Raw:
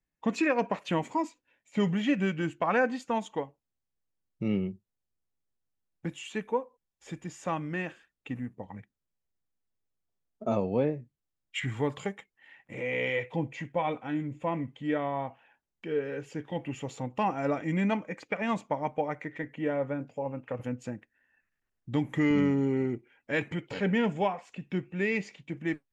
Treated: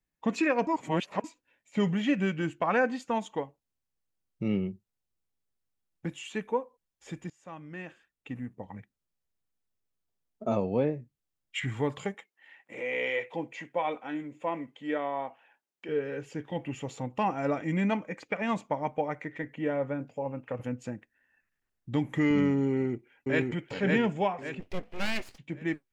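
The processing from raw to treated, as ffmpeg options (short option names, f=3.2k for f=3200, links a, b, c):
-filter_complex "[0:a]asettb=1/sr,asplit=3[a][b][c];[a]atrim=end=12.144[d];[b]atrim=start=12.14:end=15.89,asetpts=PTS-STARTPTS,afade=t=in:d=0.004:c=qsin,afade=t=out:st=3.746:d=0.004:c=qsin,highpass=310[e];[c]atrim=start=15.886[f];[d][e]acrossfade=d=0.004:c1=hsin:c2=qsin[g];[g][f]acrossfade=d=0.004:c1=qsin:c2=hsin,asplit=2[h][i];[i]afade=t=in:st=22.7:d=0.01,afade=t=out:st=23.42:d=0.01,aecho=0:1:560|1120|1680|2240|2800:0.841395|0.336558|0.134623|0.0538493|0.0215397[j];[h][j]amix=inputs=2:normalize=0,asplit=3[k][l][m];[k]afade=t=out:st=24.59:d=0.02[n];[l]aeval=exprs='abs(val(0))':c=same,afade=t=in:st=24.59:d=0.02,afade=t=out:st=25.37:d=0.02[o];[m]afade=t=in:st=25.37:d=0.02[p];[n][o][p]amix=inputs=3:normalize=0,asplit=4[q][r][s][t];[q]atrim=end=0.672[u];[r]atrim=start=0.668:end=1.242,asetpts=PTS-STARTPTS,areverse[v];[s]atrim=start=1.238:end=7.3,asetpts=PTS-STARTPTS,afade=t=out:st=6.058:d=0.004:c=hsin:silence=0.0891251[w];[t]atrim=start=7.3,asetpts=PTS-STARTPTS,afade=t=in:d=1.37:silence=0.0891251[x];[u][v]acrossfade=d=0.004:c1=hsin:c2=hsin[y];[w][x]concat=n=2:v=0:a=1[z];[y][z]acrossfade=d=0.004:c1=hsin:c2=hsin"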